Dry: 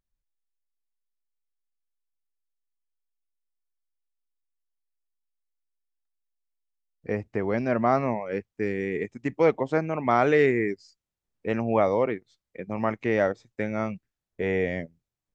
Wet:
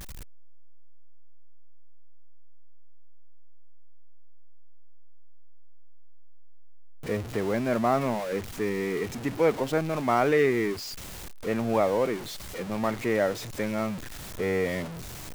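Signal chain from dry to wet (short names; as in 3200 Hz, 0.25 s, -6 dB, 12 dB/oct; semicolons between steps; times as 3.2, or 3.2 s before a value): zero-crossing step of -29 dBFS; gain -3 dB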